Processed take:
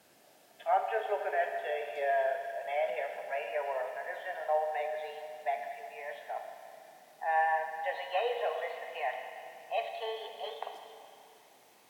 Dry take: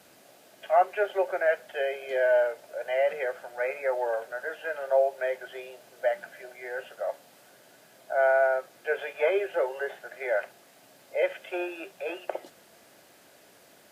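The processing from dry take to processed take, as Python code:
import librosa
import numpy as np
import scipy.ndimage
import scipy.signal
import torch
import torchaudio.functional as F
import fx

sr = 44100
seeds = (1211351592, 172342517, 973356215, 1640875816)

y = fx.speed_glide(x, sr, from_pct=105, to_pct=129)
y = fx.rev_schroeder(y, sr, rt60_s=2.6, comb_ms=26, drr_db=4.5)
y = y * 10.0 ** (-7.0 / 20.0)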